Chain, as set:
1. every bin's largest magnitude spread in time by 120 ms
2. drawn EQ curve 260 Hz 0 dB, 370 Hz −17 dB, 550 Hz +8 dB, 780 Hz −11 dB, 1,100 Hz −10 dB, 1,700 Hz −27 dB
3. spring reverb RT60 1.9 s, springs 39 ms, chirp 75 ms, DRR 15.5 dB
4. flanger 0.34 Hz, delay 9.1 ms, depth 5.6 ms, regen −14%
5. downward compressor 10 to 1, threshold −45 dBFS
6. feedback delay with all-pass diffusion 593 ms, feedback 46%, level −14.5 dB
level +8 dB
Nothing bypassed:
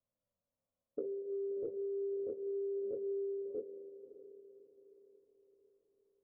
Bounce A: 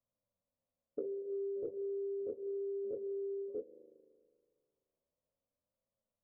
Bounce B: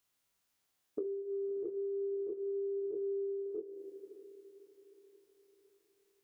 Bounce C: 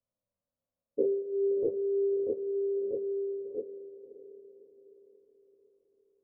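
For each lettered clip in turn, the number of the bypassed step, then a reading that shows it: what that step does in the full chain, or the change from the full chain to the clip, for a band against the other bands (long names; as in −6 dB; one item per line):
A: 6, change in momentary loudness spread −11 LU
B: 2, change in integrated loudness +1.5 LU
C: 5, average gain reduction 6.5 dB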